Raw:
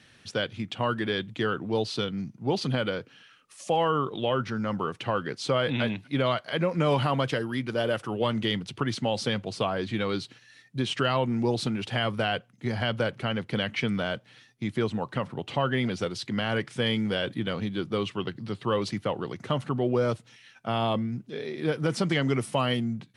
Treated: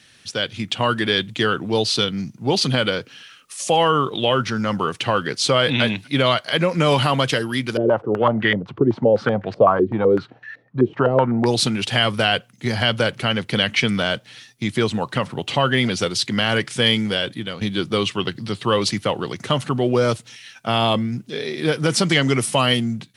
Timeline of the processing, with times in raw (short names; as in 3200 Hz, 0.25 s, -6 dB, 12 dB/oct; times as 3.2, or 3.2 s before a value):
7.77–11.46 stepped low-pass 7.9 Hz 380–1700 Hz
16.89–17.61 fade out, to -10 dB
whole clip: high shelf 2700 Hz +11 dB; AGC gain up to 7 dB